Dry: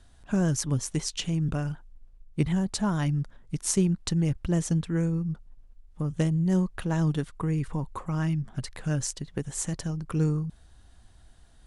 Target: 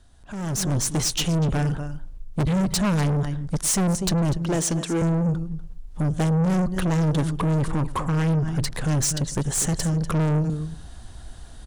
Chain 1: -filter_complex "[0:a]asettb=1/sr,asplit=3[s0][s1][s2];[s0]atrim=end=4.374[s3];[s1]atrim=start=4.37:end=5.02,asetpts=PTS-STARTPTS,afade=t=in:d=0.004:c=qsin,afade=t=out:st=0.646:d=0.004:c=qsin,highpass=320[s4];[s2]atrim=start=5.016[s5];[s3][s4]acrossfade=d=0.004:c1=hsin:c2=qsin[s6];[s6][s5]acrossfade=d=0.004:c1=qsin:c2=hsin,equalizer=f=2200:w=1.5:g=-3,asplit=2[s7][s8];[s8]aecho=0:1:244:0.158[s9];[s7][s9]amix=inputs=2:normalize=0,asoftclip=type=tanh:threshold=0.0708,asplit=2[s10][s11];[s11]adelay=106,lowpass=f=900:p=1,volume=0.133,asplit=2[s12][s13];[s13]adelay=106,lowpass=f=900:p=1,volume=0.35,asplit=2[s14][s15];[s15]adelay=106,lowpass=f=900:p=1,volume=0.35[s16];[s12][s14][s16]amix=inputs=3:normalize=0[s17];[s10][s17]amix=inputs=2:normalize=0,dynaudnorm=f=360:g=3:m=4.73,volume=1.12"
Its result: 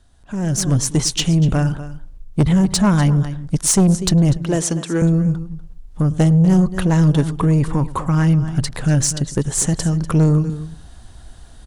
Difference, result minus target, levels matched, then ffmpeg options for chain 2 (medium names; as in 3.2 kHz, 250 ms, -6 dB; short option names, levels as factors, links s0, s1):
saturation: distortion -8 dB
-filter_complex "[0:a]asettb=1/sr,asplit=3[s0][s1][s2];[s0]atrim=end=4.374[s3];[s1]atrim=start=4.37:end=5.02,asetpts=PTS-STARTPTS,afade=t=in:d=0.004:c=qsin,afade=t=out:st=0.646:d=0.004:c=qsin,highpass=320[s4];[s2]atrim=start=5.016[s5];[s3][s4]acrossfade=d=0.004:c1=hsin:c2=qsin[s6];[s6][s5]acrossfade=d=0.004:c1=qsin:c2=hsin,equalizer=f=2200:w=1.5:g=-3,asplit=2[s7][s8];[s8]aecho=0:1:244:0.158[s9];[s7][s9]amix=inputs=2:normalize=0,asoftclip=type=tanh:threshold=0.02,asplit=2[s10][s11];[s11]adelay=106,lowpass=f=900:p=1,volume=0.133,asplit=2[s12][s13];[s13]adelay=106,lowpass=f=900:p=1,volume=0.35,asplit=2[s14][s15];[s15]adelay=106,lowpass=f=900:p=1,volume=0.35[s16];[s12][s14][s16]amix=inputs=3:normalize=0[s17];[s10][s17]amix=inputs=2:normalize=0,dynaudnorm=f=360:g=3:m=4.73,volume=1.12"